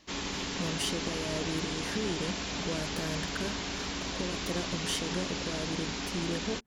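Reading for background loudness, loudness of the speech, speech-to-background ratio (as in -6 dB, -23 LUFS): -34.5 LUFS, -37.5 LUFS, -3.0 dB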